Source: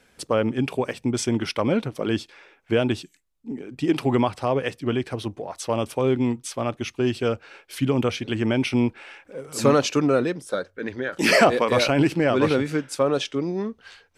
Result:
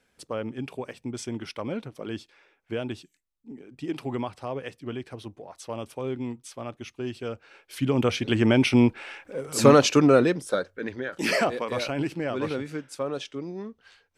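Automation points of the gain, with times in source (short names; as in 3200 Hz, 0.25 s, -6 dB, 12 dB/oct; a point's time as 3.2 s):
7.28 s -10 dB
8.28 s +2.5 dB
10.37 s +2.5 dB
11.53 s -9 dB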